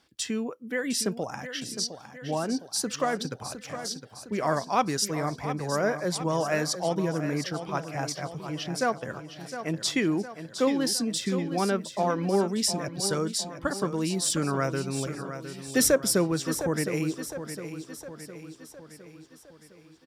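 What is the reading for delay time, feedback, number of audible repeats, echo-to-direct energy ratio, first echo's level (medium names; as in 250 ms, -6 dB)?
710 ms, 53%, 5, -9.0 dB, -10.5 dB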